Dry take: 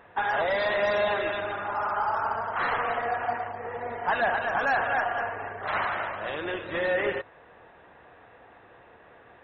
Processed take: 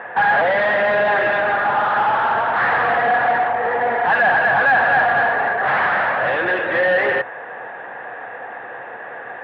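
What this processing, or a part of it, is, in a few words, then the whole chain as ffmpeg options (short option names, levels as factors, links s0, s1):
overdrive pedal into a guitar cabinet: -filter_complex "[0:a]asplit=2[s0][s1];[s1]highpass=f=720:p=1,volume=17.8,asoftclip=type=tanh:threshold=0.188[s2];[s0][s2]amix=inputs=2:normalize=0,lowpass=f=1800:p=1,volume=0.501,highpass=87,equalizer=f=130:t=q:w=4:g=7,equalizer=f=220:t=q:w=4:g=4,equalizer=f=520:t=q:w=4:g=5,equalizer=f=780:t=q:w=4:g=7,equalizer=f=1700:t=q:w=4:g=10,lowpass=f=3500:w=0.5412,lowpass=f=3500:w=1.3066"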